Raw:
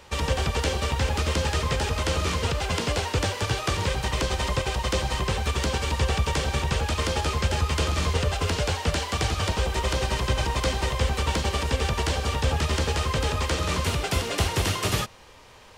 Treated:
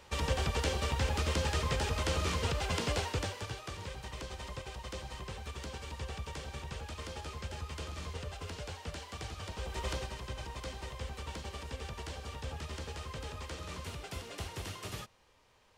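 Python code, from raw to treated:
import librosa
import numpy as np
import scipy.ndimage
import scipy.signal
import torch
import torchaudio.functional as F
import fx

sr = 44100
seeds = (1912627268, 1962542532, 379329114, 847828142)

y = fx.gain(x, sr, db=fx.line((3.0, -7.0), (3.64, -17.0), (9.5, -17.0), (9.91, -10.0), (10.14, -17.0)))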